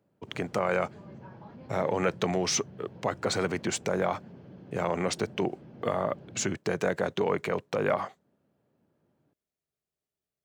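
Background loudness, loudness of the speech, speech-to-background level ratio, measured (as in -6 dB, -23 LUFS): -48.5 LUFS, -30.5 LUFS, 18.0 dB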